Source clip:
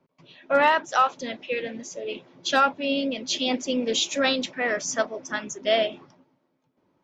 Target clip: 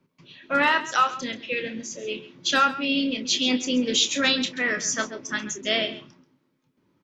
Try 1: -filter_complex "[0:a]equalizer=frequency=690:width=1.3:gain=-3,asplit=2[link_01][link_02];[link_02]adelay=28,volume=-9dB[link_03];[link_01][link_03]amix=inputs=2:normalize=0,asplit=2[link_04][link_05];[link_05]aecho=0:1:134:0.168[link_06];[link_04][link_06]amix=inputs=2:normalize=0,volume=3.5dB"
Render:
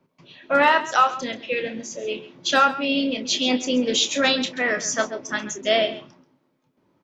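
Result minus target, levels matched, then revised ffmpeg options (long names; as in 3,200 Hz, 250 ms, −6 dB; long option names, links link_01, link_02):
500 Hz band +4.5 dB
-filter_complex "[0:a]equalizer=frequency=690:width=1.3:gain=-12.5,asplit=2[link_01][link_02];[link_02]adelay=28,volume=-9dB[link_03];[link_01][link_03]amix=inputs=2:normalize=0,asplit=2[link_04][link_05];[link_05]aecho=0:1:134:0.168[link_06];[link_04][link_06]amix=inputs=2:normalize=0,volume=3.5dB"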